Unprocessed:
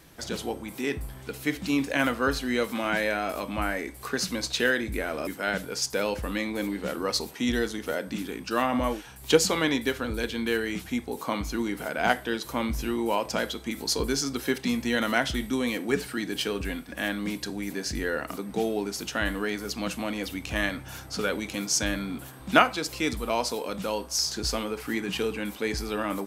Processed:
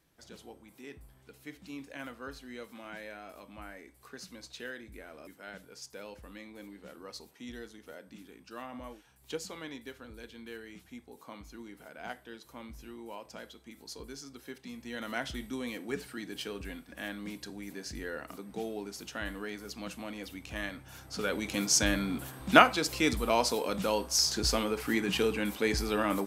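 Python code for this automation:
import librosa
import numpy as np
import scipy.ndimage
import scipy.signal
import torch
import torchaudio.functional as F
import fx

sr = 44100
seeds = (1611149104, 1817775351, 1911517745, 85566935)

y = fx.gain(x, sr, db=fx.line((14.7, -18.0), (15.22, -10.0), (20.89, -10.0), (21.59, 0.0)))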